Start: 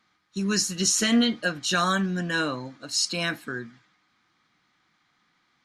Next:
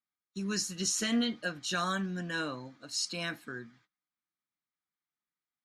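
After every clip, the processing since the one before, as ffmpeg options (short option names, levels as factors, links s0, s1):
-af "agate=range=0.0794:threshold=0.00158:ratio=16:detection=peak,volume=0.376"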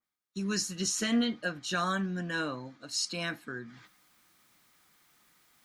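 -af "areverse,acompressor=mode=upward:threshold=0.00501:ratio=2.5,areverse,adynamicequalizer=threshold=0.00355:dfrequency=2500:dqfactor=0.7:tfrequency=2500:tqfactor=0.7:attack=5:release=100:ratio=0.375:range=2:mode=cutabove:tftype=highshelf,volume=1.26"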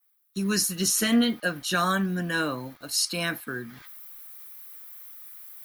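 -filter_complex "[0:a]acrossover=split=670|890[s0][s1][s2];[s0]aeval=exprs='val(0)*gte(abs(val(0)),0.00141)':c=same[s3];[s3][s1][s2]amix=inputs=3:normalize=0,aexciter=amount=8.1:drive=3.9:freq=9800,volume=2"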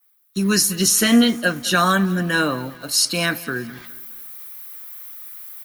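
-af "aecho=1:1:207|414|621:0.106|0.0466|0.0205,volume=2.37"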